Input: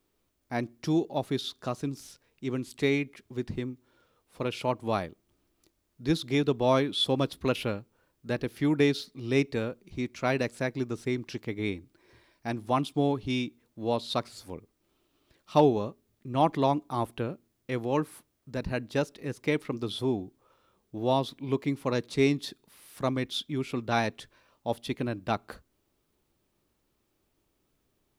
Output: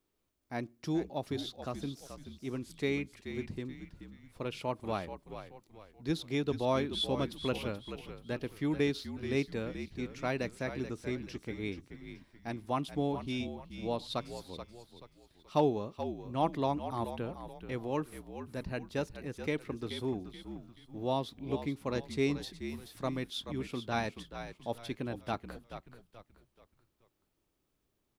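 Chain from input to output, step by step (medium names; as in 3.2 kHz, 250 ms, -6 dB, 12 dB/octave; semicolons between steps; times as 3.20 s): frequency-shifting echo 430 ms, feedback 37%, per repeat -57 Hz, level -10 dB; trim -6.5 dB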